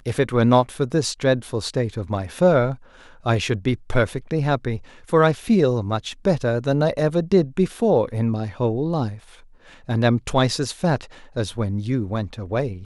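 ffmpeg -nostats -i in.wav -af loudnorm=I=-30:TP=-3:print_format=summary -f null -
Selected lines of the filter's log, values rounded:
Input Integrated:    -22.0 LUFS
Input True Peak:      -3.5 dBTP
Input LRA:             2.6 LU
Input Threshold:     -32.2 LUFS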